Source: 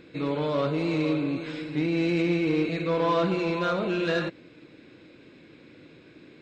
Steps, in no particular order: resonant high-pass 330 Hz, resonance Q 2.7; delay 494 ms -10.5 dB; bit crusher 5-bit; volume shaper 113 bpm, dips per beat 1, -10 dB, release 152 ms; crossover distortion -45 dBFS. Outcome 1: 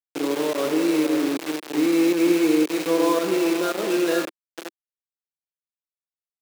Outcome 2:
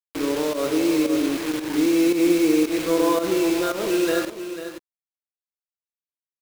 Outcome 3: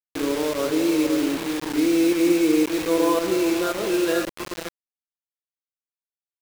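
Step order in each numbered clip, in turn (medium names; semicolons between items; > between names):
crossover distortion > delay > volume shaper > bit crusher > resonant high-pass; resonant high-pass > bit crusher > delay > volume shaper > crossover distortion; delay > volume shaper > crossover distortion > resonant high-pass > bit crusher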